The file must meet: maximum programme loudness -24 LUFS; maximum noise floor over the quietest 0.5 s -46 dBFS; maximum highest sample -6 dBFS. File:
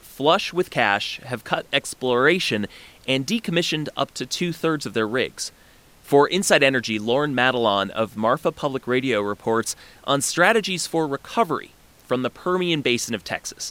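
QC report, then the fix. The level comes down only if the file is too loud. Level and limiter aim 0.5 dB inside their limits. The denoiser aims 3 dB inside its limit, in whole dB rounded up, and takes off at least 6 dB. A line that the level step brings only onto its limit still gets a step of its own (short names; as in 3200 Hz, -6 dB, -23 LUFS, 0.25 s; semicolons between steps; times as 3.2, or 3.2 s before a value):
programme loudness -22.0 LUFS: fail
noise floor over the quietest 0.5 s -52 dBFS: OK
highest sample -4.0 dBFS: fail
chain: gain -2.5 dB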